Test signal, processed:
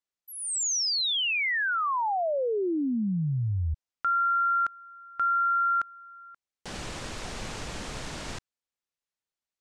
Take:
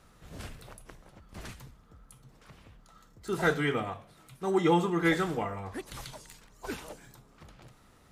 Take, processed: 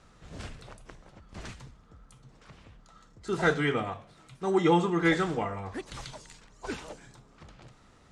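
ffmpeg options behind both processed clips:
-af "lowpass=f=8.3k:w=0.5412,lowpass=f=8.3k:w=1.3066,volume=1.5dB"

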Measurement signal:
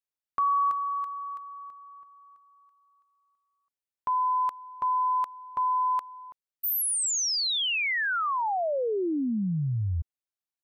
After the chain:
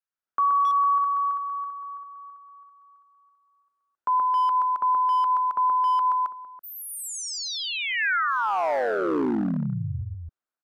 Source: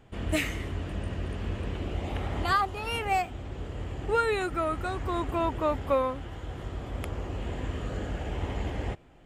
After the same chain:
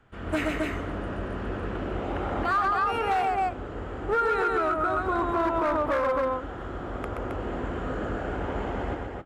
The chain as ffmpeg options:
-filter_complex "[0:a]aecho=1:1:125.4|268.2:0.631|0.631,acrossover=split=210|1000|3200[a][b][c][d];[b]dynaudnorm=f=100:g=5:m=9.5dB[e];[a][e][c][d]amix=inputs=4:normalize=0,highshelf=f=8.6k:g=-8,asoftclip=type=hard:threshold=-15dB,equalizer=f=1.4k:t=o:w=0.66:g=12,alimiter=limit=-12dB:level=0:latency=1:release=84,volume=-5.5dB"

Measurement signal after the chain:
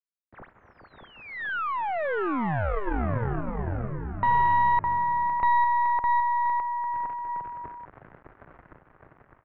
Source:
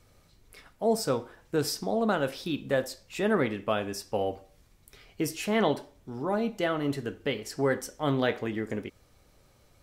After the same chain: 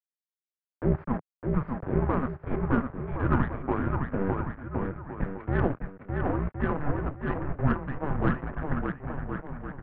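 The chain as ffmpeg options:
-filter_complex "[0:a]aeval=exprs='val(0)*gte(abs(val(0)),0.0335)':c=same,highpass=f=150:t=q:w=0.5412,highpass=f=150:t=q:w=1.307,lowpass=f=2k:t=q:w=0.5176,lowpass=f=2k:t=q:w=0.7071,lowpass=f=2k:t=q:w=1.932,afreqshift=-290,asplit=2[a][b];[b]aecho=0:1:610|1068|1411|1668|1861:0.631|0.398|0.251|0.158|0.1[c];[a][c]amix=inputs=2:normalize=0,aeval=exprs='0.316*(cos(1*acos(clip(val(0)/0.316,-1,1)))-cos(1*PI/2))+0.1*(cos(2*acos(clip(val(0)/0.316,-1,1)))-cos(2*PI/2))+0.0158*(cos(6*acos(clip(val(0)/0.316,-1,1)))-cos(6*PI/2))':c=same"

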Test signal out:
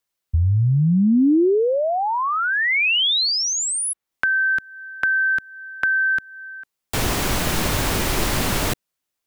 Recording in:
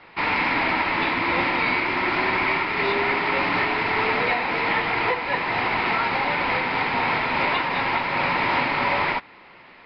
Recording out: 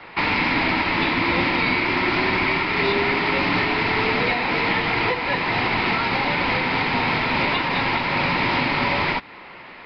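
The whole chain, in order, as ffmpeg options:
-filter_complex "[0:a]acrossover=split=340|3000[a][b][c];[a]acompressor=threshold=-23dB:ratio=4[d];[b]acompressor=threshold=-30dB:ratio=4[e];[c]acompressor=threshold=-32dB:ratio=4[f];[d][e][f]amix=inputs=3:normalize=0,volume=7dB"

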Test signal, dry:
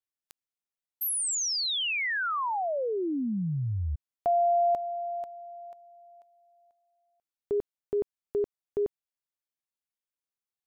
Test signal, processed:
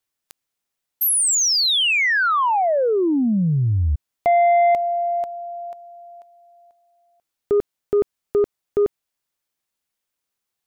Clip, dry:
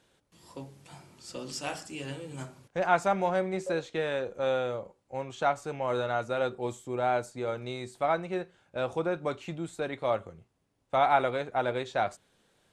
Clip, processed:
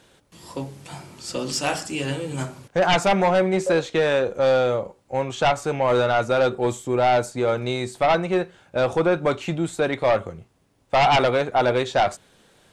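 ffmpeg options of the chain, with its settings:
-af "aeval=exprs='0.316*sin(PI/2*3.55*val(0)/0.316)':c=same,volume=-3dB"

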